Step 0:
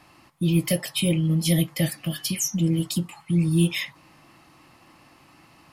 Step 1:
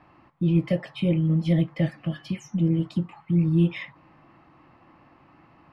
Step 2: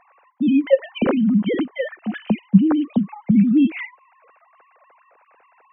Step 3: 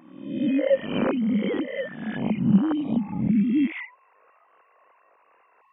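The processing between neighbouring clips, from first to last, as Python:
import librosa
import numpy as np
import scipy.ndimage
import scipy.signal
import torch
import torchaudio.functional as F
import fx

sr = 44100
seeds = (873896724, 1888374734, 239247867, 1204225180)

y1 = scipy.signal.sosfilt(scipy.signal.butter(2, 1700.0, 'lowpass', fs=sr, output='sos'), x)
y2 = fx.sine_speech(y1, sr)
y2 = y2 * librosa.db_to_amplitude(5.5)
y3 = fx.spec_swells(y2, sr, rise_s=0.83)
y3 = y3 * librosa.db_to_amplitude(-7.5)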